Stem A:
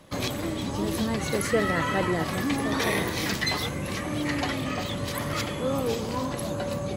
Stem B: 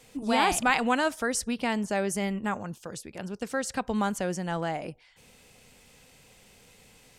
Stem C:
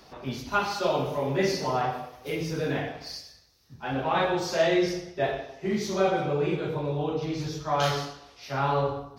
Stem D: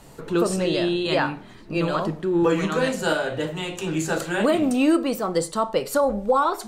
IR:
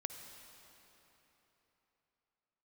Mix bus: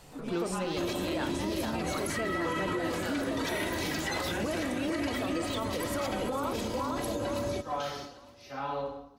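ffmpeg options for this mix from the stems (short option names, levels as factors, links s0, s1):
-filter_complex "[0:a]aecho=1:1:3.1:0.84,asoftclip=type=tanh:threshold=0.251,adelay=650,volume=0.891,asplit=2[s0][s1];[s1]volume=0.141[s2];[1:a]acompressor=threshold=0.02:ratio=6,volume=0.501[s3];[2:a]aecho=1:1:3.9:0.67,volume=0.316[s4];[3:a]volume=0.447,asplit=2[s5][s6];[s6]volume=0.631[s7];[s2][s7]amix=inputs=2:normalize=0,aecho=0:1:454|908|1362|1816|2270:1|0.32|0.102|0.0328|0.0105[s8];[s0][s3][s4][s5][s8]amix=inputs=5:normalize=0,alimiter=limit=0.0668:level=0:latency=1:release=121"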